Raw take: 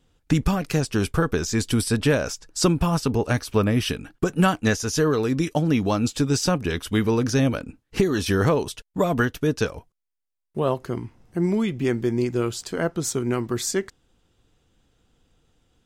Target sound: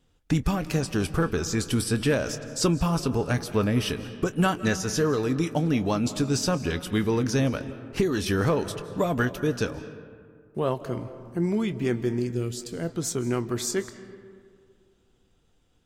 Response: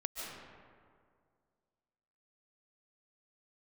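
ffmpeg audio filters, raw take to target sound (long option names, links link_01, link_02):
-filter_complex "[0:a]asettb=1/sr,asplit=3[link_01][link_02][link_03];[link_01]atrim=end=12.194[link_04];[link_02]atrim=start=12.19:end=12.89,asetpts=PTS-STARTPTS,afade=type=in:duration=0.004:curve=qsin,afade=type=out:start_time=0.696:duration=0.004:curve=qsin,equalizer=frequency=1100:width=0.63:gain=-12.5[link_05];[link_03]atrim=start=12.886[link_06];[link_04][link_05]acrossfade=duration=0.004:curve1=hsin:curve2=qsin[link_07];[link_07][link_06]acrossfade=duration=0.004:curve1=qsin:curve2=hsin,asplit=2[link_08][link_09];[1:a]atrim=start_sample=2205,adelay=24[link_10];[link_09][link_10]afir=irnorm=-1:irlink=0,volume=-12.5dB[link_11];[link_08][link_11]amix=inputs=2:normalize=0,acontrast=40,volume=-8.5dB"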